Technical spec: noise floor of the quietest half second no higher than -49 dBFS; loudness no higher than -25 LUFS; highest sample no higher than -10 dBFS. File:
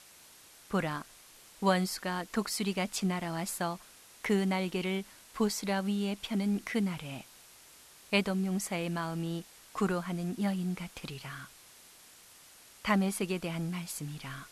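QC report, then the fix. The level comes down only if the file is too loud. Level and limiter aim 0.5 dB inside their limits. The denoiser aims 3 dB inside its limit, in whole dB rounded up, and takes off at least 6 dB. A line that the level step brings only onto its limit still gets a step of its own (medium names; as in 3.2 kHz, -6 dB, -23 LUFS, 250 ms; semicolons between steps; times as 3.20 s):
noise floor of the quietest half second -56 dBFS: pass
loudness -33.5 LUFS: pass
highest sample -14.0 dBFS: pass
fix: none needed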